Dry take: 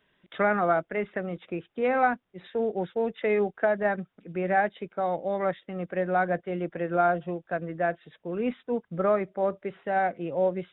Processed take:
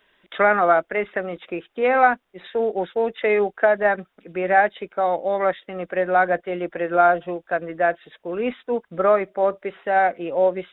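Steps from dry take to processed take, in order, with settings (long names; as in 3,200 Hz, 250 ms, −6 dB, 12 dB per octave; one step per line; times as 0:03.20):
parametric band 130 Hz −14.5 dB 1.8 octaves
level +8.5 dB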